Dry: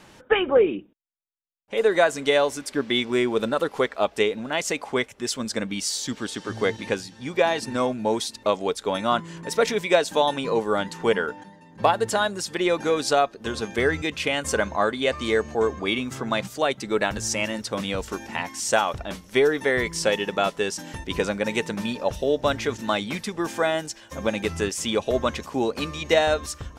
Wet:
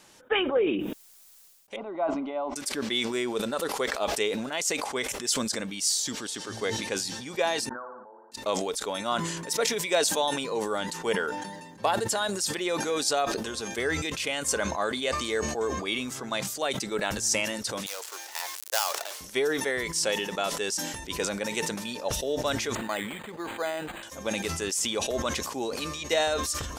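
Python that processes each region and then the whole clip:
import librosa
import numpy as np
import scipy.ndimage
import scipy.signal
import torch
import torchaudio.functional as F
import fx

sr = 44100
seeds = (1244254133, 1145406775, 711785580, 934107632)

y = fx.chain(x, sr, fx.lowpass(hz=1900.0, slope=24),
    fx.fixed_phaser(hz=460.0, stages=6), at=(1.76, 2.56))
y = fx.chain(y, sr, fx.steep_lowpass(hz=1600.0, slope=96),
    fx.differentiator(),
    fx.room_flutter(wall_m=9.8, rt60_s=0.72), at=(7.69, 8.32))
y = fx.chain(y, sr, fx.dead_time(dead_ms=0.14),
    fx.bessel_highpass(hz=690.0, order=8), at=(17.86, 19.21))
y = fx.chain(y, sr, fx.low_shelf(hz=200.0, db=-8.0),
    fx.resample_linear(factor=8), at=(22.75, 24.03))
y = fx.bass_treble(y, sr, bass_db=-6, treble_db=10)
y = fx.sustainer(y, sr, db_per_s=39.0)
y = F.gain(torch.from_numpy(y), -7.0).numpy()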